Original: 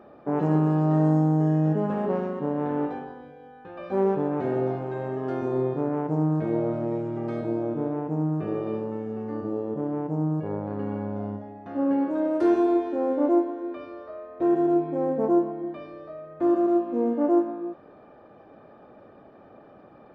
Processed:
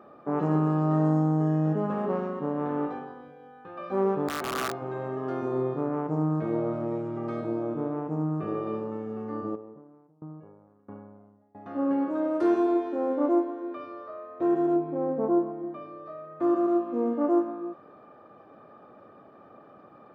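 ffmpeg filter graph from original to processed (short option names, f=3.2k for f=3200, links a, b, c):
-filter_complex "[0:a]asettb=1/sr,asplit=3[a][b][c];[a]atrim=end=4.284[d];[b]atrim=start=4.28:end=4.82,asetpts=PTS-STARTPTS,afade=t=in:d=0.004:c=qsin,afade=t=out:st=0.536:d=0.004:c=qsin,lowshelf=f=270:g=-9,aeval=exprs='(mod(13.3*val(0)+1,2)-1)/13.3':c=same[e];[c]atrim=start=4.816[f];[d][e]acrossfade=d=0.004:c1=hsin:c2=qsin[g];[g][f]acrossfade=d=0.004:c1=qsin:c2=hsin,asettb=1/sr,asplit=3[h][i][j];[h]atrim=end=9.554[k];[i]atrim=start=9.55:end=11.55,asetpts=PTS-STARTPTS,afade=t=in:d=0.004:c=qsin,afade=t=out:st=1.996:d=0.004:c=qsin,lowpass=2.1k,acompressor=threshold=-34dB:ratio=5:attack=3.2:release=140:knee=1:detection=peak,aeval=exprs='val(0)*pow(10,-26*if(lt(mod(1.5*n/s,1),2*abs(1.5)/1000),1-mod(1.5*n/s,1)/(2*abs(1.5)/1000),(mod(1.5*n/s,1)-2*abs(1.5)/1000)/(1-2*abs(1.5)/1000))/20)':c=same[l];[j]atrim=start=11.546[m];[k][l]acrossfade=d=0.004:c1=hsin:c2=qsin[n];[n][m]acrossfade=d=0.004:c1=qsin:c2=hsin,asettb=1/sr,asplit=3[o][p][q];[o]atrim=end=14.764[r];[p]atrim=start=14.76:end=16.06,asetpts=PTS-STARTPTS,afade=t=in:d=0.004:c=qsin,afade=t=out:st=1.296:d=0.004:c=qsin,highshelf=f=2.6k:g=-10.5,bandreject=f=1.8k:w=26[s];[q]atrim=start=16.056[t];[r][s]acrossfade=d=0.004:c1=hsin:c2=qsin[u];[u][t]acrossfade=d=0.004:c1=qsin:c2=hsin,highpass=92,equalizer=f=1.2k:w=6.2:g=9.5,volume=-2.5dB"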